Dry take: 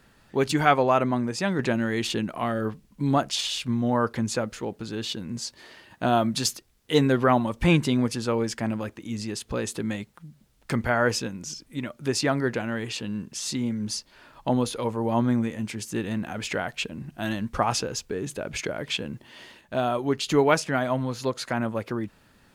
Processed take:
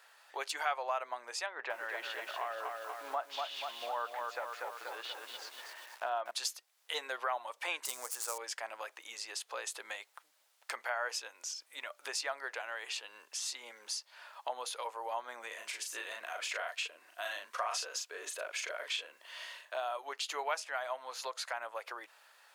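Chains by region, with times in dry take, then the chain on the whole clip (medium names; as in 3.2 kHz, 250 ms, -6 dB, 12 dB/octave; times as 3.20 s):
1.46–6.31 s: low-pass 2.3 kHz + bit-crushed delay 241 ms, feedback 55%, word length 8-bit, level -4.5 dB
7.85–8.38 s: dead-time distortion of 0.098 ms + resonant high shelf 5 kHz +13.5 dB, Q 1.5
15.47–19.75 s: Butterworth band-stop 830 Hz, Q 6.5 + doubling 38 ms -3.5 dB
whole clip: inverse Chebyshev high-pass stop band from 190 Hz, stop band 60 dB; compression 2:1, threshold -41 dBFS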